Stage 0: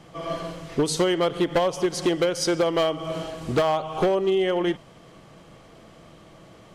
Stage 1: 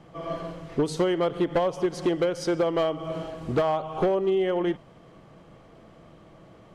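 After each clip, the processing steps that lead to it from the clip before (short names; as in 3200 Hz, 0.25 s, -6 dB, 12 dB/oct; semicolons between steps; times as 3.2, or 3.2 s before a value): high shelf 2700 Hz -11 dB; gain -1.5 dB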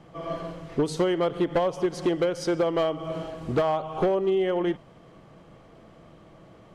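nothing audible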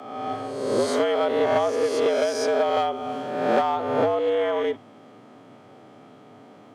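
spectral swells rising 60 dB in 1.22 s; frequency shift +100 Hz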